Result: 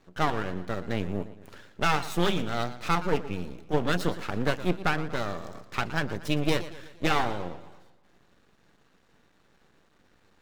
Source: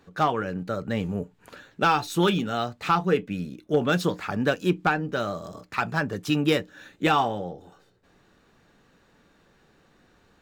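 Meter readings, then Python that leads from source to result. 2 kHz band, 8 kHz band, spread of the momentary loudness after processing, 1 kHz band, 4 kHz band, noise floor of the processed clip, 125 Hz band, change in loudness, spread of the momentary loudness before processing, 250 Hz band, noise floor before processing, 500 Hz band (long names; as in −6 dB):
−2.5 dB, −1.0 dB, 11 LU, −4.5 dB, −2.0 dB, −64 dBFS, −2.5 dB, −4.0 dB, 11 LU, −4.5 dB, −62 dBFS, −4.5 dB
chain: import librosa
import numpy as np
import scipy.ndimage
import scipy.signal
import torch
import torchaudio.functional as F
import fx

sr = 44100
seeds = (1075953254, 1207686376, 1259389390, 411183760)

y = np.maximum(x, 0.0)
y = fx.echo_warbled(y, sr, ms=117, feedback_pct=50, rate_hz=2.8, cents=132, wet_db=-15.0)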